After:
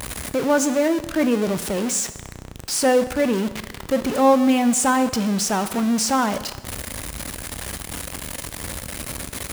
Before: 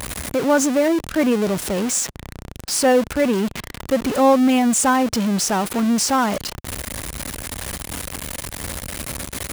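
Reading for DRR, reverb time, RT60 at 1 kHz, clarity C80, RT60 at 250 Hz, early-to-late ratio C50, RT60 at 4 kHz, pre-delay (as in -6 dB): 11.0 dB, 1.1 s, 1.1 s, 15.0 dB, 1.2 s, 13.0 dB, 1.0 s, 7 ms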